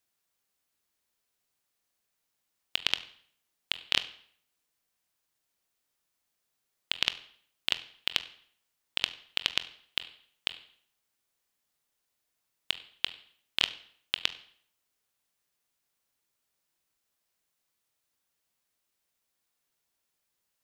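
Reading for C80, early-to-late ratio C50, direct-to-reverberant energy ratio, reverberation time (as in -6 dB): 18.5 dB, 16.0 dB, 11.5 dB, 0.60 s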